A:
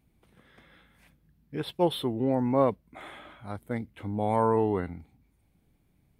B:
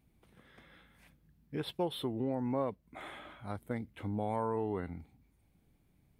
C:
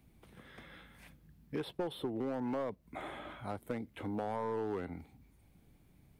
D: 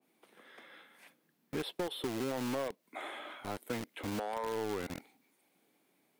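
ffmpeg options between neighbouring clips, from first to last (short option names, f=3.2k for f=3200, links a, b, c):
-af "acompressor=threshold=-31dB:ratio=2.5,volume=-2dB"
-filter_complex "[0:a]aeval=exprs='clip(val(0),-1,0.0335)':c=same,acrossover=split=260|1000[a][b][c];[a]acompressor=threshold=-53dB:ratio=4[d];[b]acompressor=threshold=-41dB:ratio=4[e];[c]acompressor=threshold=-55dB:ratio=4[f];[d][e][f]amix=inputs=3:normalize=0,volume=5.5dB"
-filter_complex "[0:a]acrossover=split=270|6100[a][b][c];[a]acrusher=bits=6:mix=0:aa=0.000001[d];[d][b][c]amix=inputs=3:normalize=0,adynamicequalizer=threshold=0.00251:dfrequency=1600:dqfactor=0.7:tfrequency=1600:tqfactor=0.7:attack=5:release=100:ratio=0.375:range=3:mode=boostabove:tftype=highshelf"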